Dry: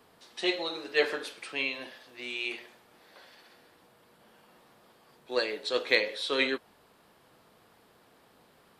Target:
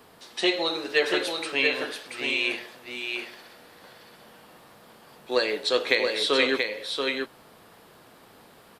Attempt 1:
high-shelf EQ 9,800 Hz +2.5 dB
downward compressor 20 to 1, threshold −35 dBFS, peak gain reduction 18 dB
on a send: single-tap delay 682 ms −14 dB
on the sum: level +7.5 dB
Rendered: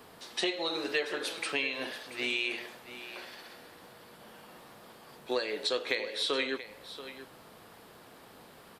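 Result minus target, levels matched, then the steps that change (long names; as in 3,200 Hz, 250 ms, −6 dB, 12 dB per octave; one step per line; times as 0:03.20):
downward compressor: peak gain reduction +9.5 dB; echo-to-direct −9 dB
change: downward compressor 20 to 1, threshold −25 dBFS, peak gain reduction 8.5 dB
change: single-tap delay 682 ms −5 dB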